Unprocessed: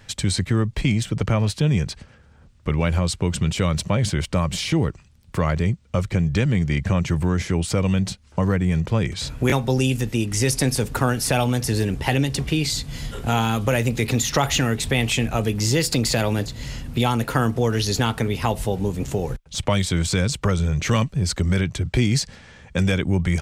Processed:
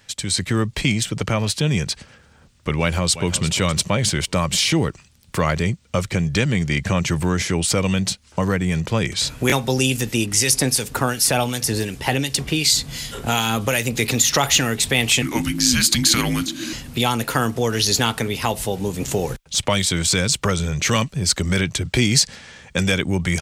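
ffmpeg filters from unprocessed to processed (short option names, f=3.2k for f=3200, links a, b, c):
-filter_complex "[0:a]asplit=2[a][b];[b]afade=t=in:st=2.8:d=0.01,afade=t=out:st=3.46:d=0.01,aecho=0:1:350|700|1050:0.223872|0.055968|0.013992[c];[a][c]amix=inputs=2:normalize=0,asettb=1/sr,asplit=3[d][e][f];[d]atrim=end=10.264[g];[e]atrim=start=10.26:end=13.96,asetpts=PTS-STARTPTS,afade=t=in:d=0.004:c=qsin,afade=t=out:st=3.696:d=0.004:c=qsin,acrossover=split=1700[h][i];[h]aeval=exprs='val(0)*(1-0.5/2+0.5/2*cos(2*PI*2.7*n/s))':c=same[j];[i]aeval=exprs='val(0)*(1-0.5/2-0.5/2*cos(2*PI*2.7*n/s))':c=same[k];[j][k]amix=inputs=2:normalize=0[l];[f]atrim=start=13.956[m];[g][l]acrossfade=d=0.004:c1=hsin:c2=qsin[n];[n][m]acrossfade=d=0.004:c1=qsin:c2=hsin,asettb=1/sr,asplit=3[o][p][q];[o]atrim=end=15.224[r];[p]atrim=start=15.22:end=16.73,asetpts=PTS-STARTPTS,afade=t=in:d=0.004:c=qsin,afade=t=out:st=1.506:d=0.004:c=qsin,afreqshift=-370[s];[q]atrim=start=16.726[t];[r][s]acrossfade=d=0.004:c1=hsin:c2=qsin[u];[u][t]acrossfade=d=0.004:c1=qsin:c2=hsin,lowshelf=f=98:g=-9.5,dynaudnorm=f=160:g=5:m=10dB,highshelf=f=2.4k:g=8,volume=-5.5dB"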